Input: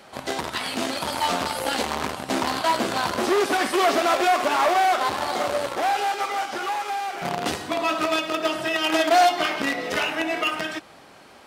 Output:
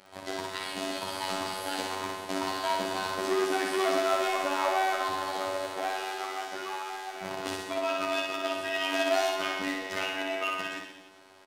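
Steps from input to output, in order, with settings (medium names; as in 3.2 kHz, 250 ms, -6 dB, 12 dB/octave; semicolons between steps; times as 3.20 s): robot voice 95.1 Hz; on a send: reverse bouncing-ball echo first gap 60 ms, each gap 1.15×, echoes 5; on the sum: trim -7 dB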